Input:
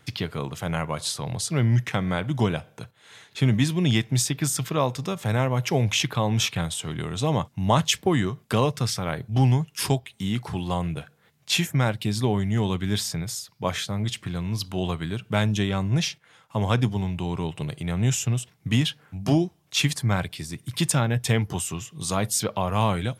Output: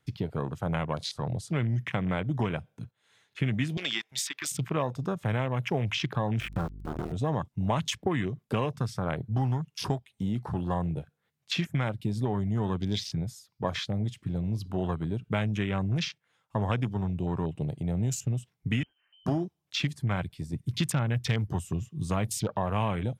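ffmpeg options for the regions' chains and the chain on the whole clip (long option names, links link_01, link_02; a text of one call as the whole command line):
ffmpeg -i in.wav -filter_complex "[0:a]asettb=1/sr,asplit=3[link_01][link_02][link_03];[link_01]atrim=end=3.774[link_04];[link_02]atrim=start=3.77:end=4.52,asetpts=PTS-STARTPTS,afade=type=in:duration=0.004:curve=qsin,afade=type=out:start_time=0.746:duration=0.004:curve=qsin,highpass=1000,acontrast=52[link_05];[link_03]atrim=start=4.516[link_06];[link_04][link_05]acrossfade=duration=0.004:curve1=hsin:curve2=qsin[link_07];[link_07][link_06]acrossfade=duration=0.004:curve1=qsin:curve2=hsin,asettb=1/sr,asplit=3[link_08][link_09][link_10];[link_08]atrim=end=6.404[link_11];[link_09]atrim=start=6.4:end=7.12,asetpts=PTS-STARTPTS,afade=type=in:duration=0.004:curve=qsin,afade=type=out:start_time=0.716:duration=0.004:curve=qsin,lowpass=2800,aeval=exprs='val(0)*gte(abs(val(0)),0.0422)':channel_layout=same,aeval=exprs='val(0)+0.00891*(sin(2*PI*50*n/s)+sin(2*PI*2*50*n/s)/2+sin(2*PI*3*50*n/s)/3+sin(2*PI*4*50*n/s)/4+sin(2*PI*5*50*n/s)/5)':channel_layout=same[link_12];[link_10]atrim=start=7.116[link_13];[link_11][link_12]acrossfade=duration=0.004:curve1=hsin:curve2=qsin[link_14];[link_14][link_13]acrossfade=duration=0.004:curve1=qsin:curve2=hsin,asettb=1/sr,asplit=3[link_15][link_16][link_17];[link_15]atrim=end=18.834[link_18];[link_16]atrim=start=18.83:end=19.26,asetpts=PTS-STARTPTS,afade=type=in:duration=0.004:curve=qsin,afade=type=out:start_time=0.426:duration=0.004:curve=qsin,aeval=exprs='clip(val(0),-1,0.0447)':channel_layout=same,acompressor=threshold=-41dB:ratio=12:attack=3.2:release=140:knee=1:detection=peak,lowpass=frequency=2700:width_type=q:width=0.5098,lowpass=frequency=2700:width_type=q:width=0.6013,lowpass=frequency=2700:width_type=q:width=0.9,lowpass=frequency=2700:width_type=q:width=2.563,afreqshift=-3200[link_19];[link_17]atrim=start=19.256[link_20];[link_18][link_19]acrossfade=duration=0.004:curve1=hsin:curve2=qsin[link_21];[link_21][link_20]acrossfade=duration=0.004:curve1=qsin:curve2=hsin,asettb=1/sr,asplit=3[link_22][link_23][link_24];[link_22]atrim=end=20.534[link_25];[link_23]atrim=start=20.53:end=22.47,asetpts=PTS-STARTPTS,afade=type=in:duration=0.004:curve=qsin,afade=type=out:start_time=1.936:duration=0.004:curve=qsin,acrusher=bits=9:mode=log:mix=0:aa=0.000001,lowshelf=frequency=130:gain=9[link_26];[link_24]atrim=start=22.466[link_27];[link_25][link_26]acrossfade=duration=0.004:curve1=hsin:curve2=qsin[link_28];[link_28][link_27]acrossfade=duration=0.004:curve1=qsin:curve2=hsin,afwtdn=0.0224,acrossover=split=1000|2500[link_29][link_30][link_31];[link_29]acompressor=threshold=-26dB:ratio=4[link_32];[link_30]acompressor=threshold=-38dB:ratio=4[link_33];[link_31]acompressor=threshold=-34dB:ratio=4[link_34];[link_32][link_33][link_34]amix=inputs=3:normalize=0" out.wav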